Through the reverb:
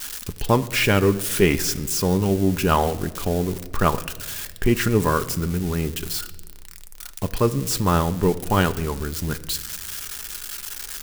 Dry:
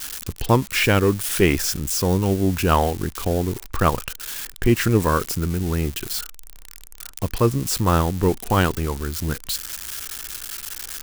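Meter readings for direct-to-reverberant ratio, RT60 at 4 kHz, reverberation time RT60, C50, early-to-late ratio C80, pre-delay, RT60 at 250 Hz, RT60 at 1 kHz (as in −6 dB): 9.0 dB, 1.0 s, 1.4 s, 16.5 dB, 18.0 dB, 5 ms, 1.8 s, 1.1 s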